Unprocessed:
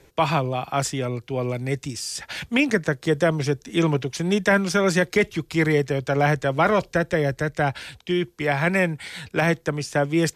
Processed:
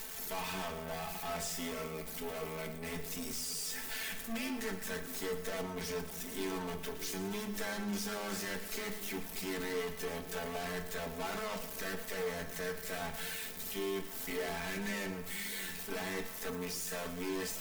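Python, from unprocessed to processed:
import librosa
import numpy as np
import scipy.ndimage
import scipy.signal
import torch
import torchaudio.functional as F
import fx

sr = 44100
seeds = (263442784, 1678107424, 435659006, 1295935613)

y = x + 0.5 * 10.0 ** (-17.5 / 20.0) * np.diff(np.sign(x), prepend=np.sign(x[:1]))
y = fx.highpass(y, sr, hz=230.0, slope=6)
y = fx.peak_eq(y, sr, hz=1700.0, db=3.0, octaves=0.33)
y = fx.tube_stage(y, sr, drive_db=36.0, bias=0.7)
y = fx.stretch_grains(y, sr, factor=1.7, grain_ms=22.0)
y = fx.echo_split(y, sr, split_hz=510.0, low_ms=573, high_ms=114, feedback_pct=52, wet_db=-13)
y = fx.room_shoebox(y, sr, seeds[0], volume_m3=42.0, walls='mixed', distance_m=0.32)
y = F.gain(torch.from_numpy(y), -1.5).numpy()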